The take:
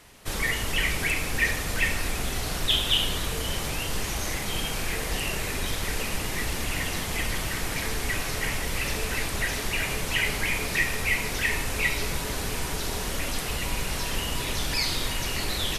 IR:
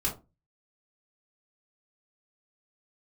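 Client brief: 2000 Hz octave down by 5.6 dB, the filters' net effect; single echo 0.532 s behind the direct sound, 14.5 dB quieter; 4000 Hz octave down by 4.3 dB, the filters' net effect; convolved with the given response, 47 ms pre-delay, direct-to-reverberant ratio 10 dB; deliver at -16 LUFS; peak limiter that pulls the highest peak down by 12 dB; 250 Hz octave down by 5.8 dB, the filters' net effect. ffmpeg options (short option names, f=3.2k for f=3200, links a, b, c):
-filter_complex "[0:a]equalizer=f=250:t=o:g=-8.5,equalizer=f=2k:t=o:g=-5.5,equalizer=f=4k:t=o:g=-3.5,alimiter=level_in=1.5dB:limit=-24dB:level=0:latency=1,volume=-1.5dB,aecho=1:1:532:0.188,asplit=2[a][b];[1:a]atrim=start_sample=2205,adelay=47[c];[b][c]afir=irnorm=-1:irlink=0,volume=-16dB[d];[a][d]amix=inputs=2:normalize=0,volume=18dB"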